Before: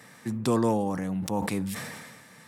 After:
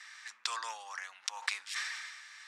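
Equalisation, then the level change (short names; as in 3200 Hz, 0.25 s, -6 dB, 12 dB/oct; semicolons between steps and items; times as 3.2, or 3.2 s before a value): HPF 1300 Hz 24 dB/oct; ladder low-pass 7300 Hz, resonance 25%; +8.5 dB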